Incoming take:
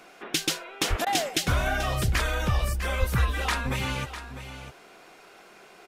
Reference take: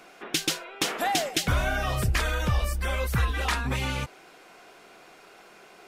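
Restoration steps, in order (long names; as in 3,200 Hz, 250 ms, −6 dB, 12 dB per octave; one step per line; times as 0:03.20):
high-pass at the plosives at 0:00.89/0:02.99
repair the gap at 0:01.05, 14 ms
echo removal 651 ms −12 dB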